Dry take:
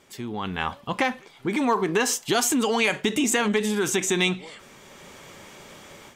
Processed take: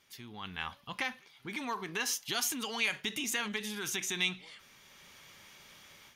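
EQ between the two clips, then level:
guitar amp tone stack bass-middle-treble 5-5-5
parametric band 7,800 Hz −14 dB 0.26 octaves
+1.5 dB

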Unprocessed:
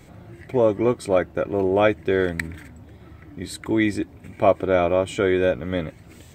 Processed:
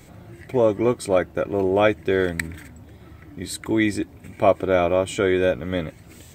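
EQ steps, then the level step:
high-shelf EQ 5,200 Hz +6.5 dB
0.0 dB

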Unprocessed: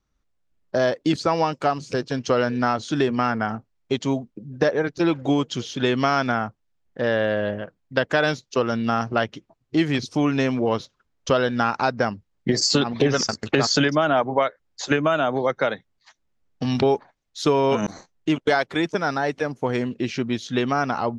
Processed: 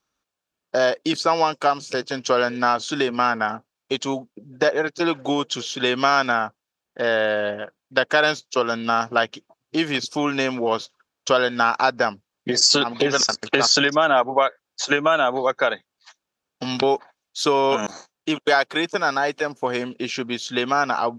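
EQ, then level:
high-pass filter 730 Hz 6 dB per octave
notch filter 2,000 Hz, Q 7.4
+5.5 dB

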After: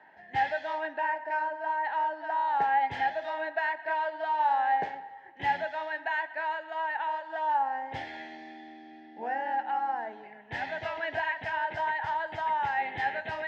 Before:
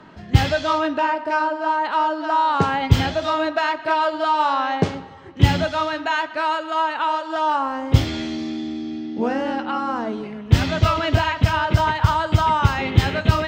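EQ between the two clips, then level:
pair of resonant band-passes 1,200 Hz, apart 1.1 octaves
0.0 dB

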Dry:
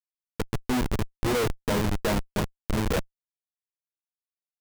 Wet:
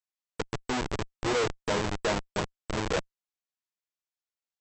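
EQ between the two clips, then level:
linear-phase brick-wall low-pass 8,100 Hz
low-shelf EQ 160 Hz −10 dB
parametric band 230 Hz −6.5 dB 0.41 octaves
0.0 dB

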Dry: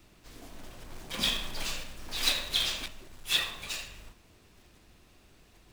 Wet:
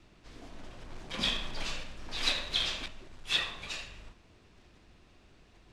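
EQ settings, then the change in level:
high-frequency loss of the air 85 metres
0.0 dB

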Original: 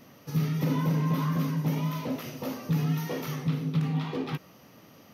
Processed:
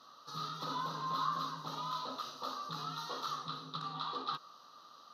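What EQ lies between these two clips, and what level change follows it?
pair of resonant band-passes 2,200 Hz, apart 1.7 octaves
+9.5 dB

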